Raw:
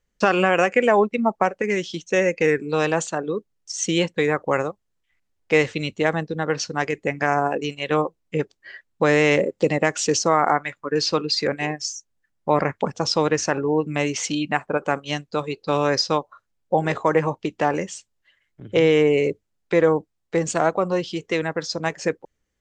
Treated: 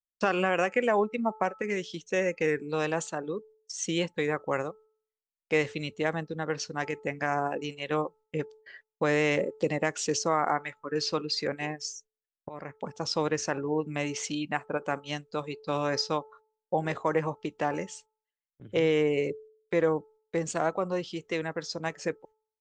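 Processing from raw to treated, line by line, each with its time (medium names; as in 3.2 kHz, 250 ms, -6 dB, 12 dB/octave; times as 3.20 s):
12.49–13.15 s: fade in, from -20.5 dB
whole clip: gate -44 dBFS, range -27 dB; de-hum 435 Hz, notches 3; trim -8 dB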